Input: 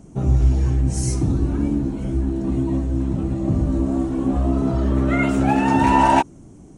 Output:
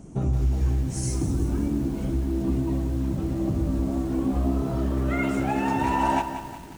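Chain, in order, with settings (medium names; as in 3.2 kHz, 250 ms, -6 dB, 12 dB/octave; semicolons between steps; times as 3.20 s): compression 2.5:1, threshold -24 dBFS, peak gain reduction 9 dB; bit-crushed delay 181 ms, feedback 55%, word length 7-bit, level -9.5 dB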